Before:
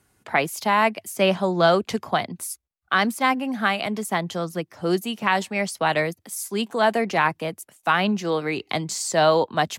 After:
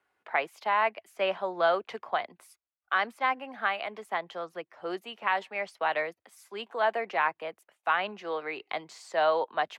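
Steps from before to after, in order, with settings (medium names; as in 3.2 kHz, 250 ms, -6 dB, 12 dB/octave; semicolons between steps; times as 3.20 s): three-band isolator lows -23 dB, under 420 Hz, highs -21 dB, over 3.3 kHz; trim -5.5 dB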